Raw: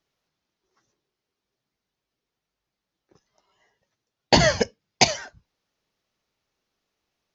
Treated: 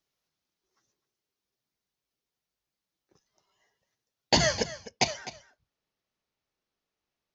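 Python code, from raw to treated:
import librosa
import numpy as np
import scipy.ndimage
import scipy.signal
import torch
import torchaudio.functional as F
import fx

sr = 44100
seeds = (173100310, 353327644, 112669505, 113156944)

y = fx.high_shelf(x, sr, hz=4900.0, db=fx.steps((0.0, 9.0), (4.64, -2.5)))
y = y + 10.0 ** (-15.5 / 20.0) * np.pad(y, (int(255 * sr / 1000.0), 0))[:len(y)]
y = F.gain(torch.from_numpy(y), -7.5).numpy()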